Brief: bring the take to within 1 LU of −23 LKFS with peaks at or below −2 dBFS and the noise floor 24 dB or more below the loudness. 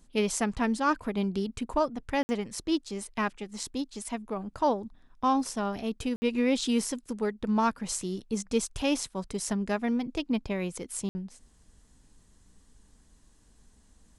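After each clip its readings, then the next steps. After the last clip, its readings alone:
number of dropouts 3; longest dropout 60 ms; integrated loudness −30.5 LKFS; sample peak −14.0 dBFS; target loudness −23.0 LKFS
→ repair the gap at 0:02.23/0:06.16/0:11.09, 60 ms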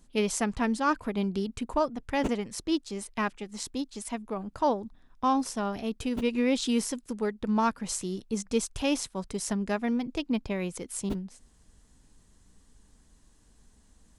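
number of dropouts 0; integrated loudness −30.5 LKFS; sample peak −14.0 dBFS; target loudness −23.0 LKFS
→ level +7.5 dB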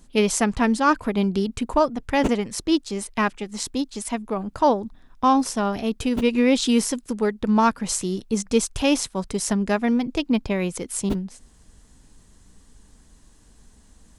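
integrated loudness −23.0 LKFS; sample peak −6.5 dBFS; background noise floor −54 dBFS

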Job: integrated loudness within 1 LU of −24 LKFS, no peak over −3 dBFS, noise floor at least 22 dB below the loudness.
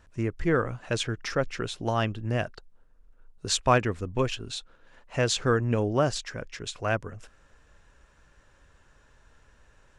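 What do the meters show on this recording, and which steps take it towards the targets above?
integrated loudness −28.5 LKFS; sample peak −8.0 dBFS; target loudness −24.0 LKFS
→ level +4.5 dB

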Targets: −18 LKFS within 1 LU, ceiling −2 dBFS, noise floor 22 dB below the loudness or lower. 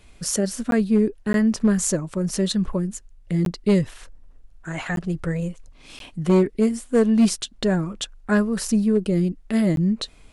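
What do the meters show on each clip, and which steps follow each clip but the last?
share of clipped samples 0.5%; peaks flattened at −11.0 dBFS; number of dropouts 6; longest dropout 12 ms; integrated loudness −22.5 LKFS; sample peak −11.0 dBFS; target loudness −18.0 LKFS
→ clipped peaks rebuilt −11 dBFS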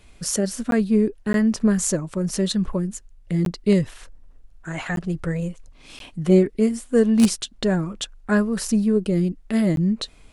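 share of clipped samples 0.0%; number of dropouts 6; longest dropout 12 ms
→ repair the gap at 0:00.71/0:01.33/0:03.45/0:04.96/0:05.99/0:09.76, 12 ms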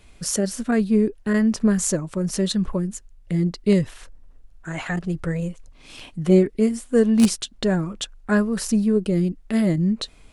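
number of dropouts 0; integrated loudness −22.0 LKFS; sample peak −2.0 dBFS; target loudness −18.0 LKFS
→ level +4 dB
brickwall limiter −2 dBFS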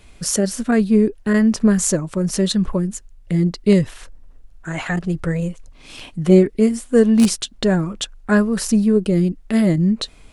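integrated loudness −18.0 LKFS; sample peak −2.0 dBFS; background noise floor −46 dBFS

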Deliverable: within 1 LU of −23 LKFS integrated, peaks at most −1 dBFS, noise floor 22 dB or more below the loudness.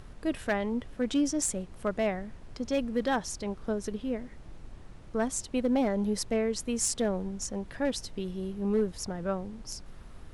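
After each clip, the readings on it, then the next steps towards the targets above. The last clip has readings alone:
share of clipped samples 0.4%; peaks flattened at −20.0 dBFS; background noise floor −48 dBFS; target noise floor −54 dBFS; integrated loudness −31.5 LKFS; sample peak −20.0 dBFS; target loudness −23.0 LKFS
→ clipped peaks rebuilt −20 dBFS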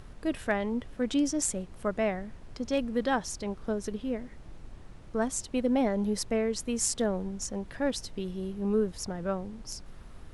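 share of clipped samples 0.0%; background noise floor −48 dBFS; target noise floor −53 dBFS
→ noise reduction from a noise print 6 dB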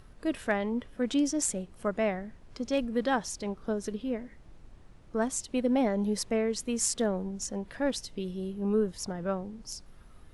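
background noise floor −54 dBFS; integrated loudness −31.0 LKFS; sample peak −14.0 dBFS; target loudness −23.0 LKFS
→ level +8 dB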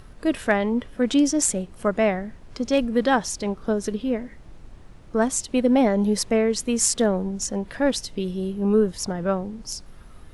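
integrated loudness −23.0 LKFS; sample peak −6.0 dBFS; background noise floor −46 dBFS

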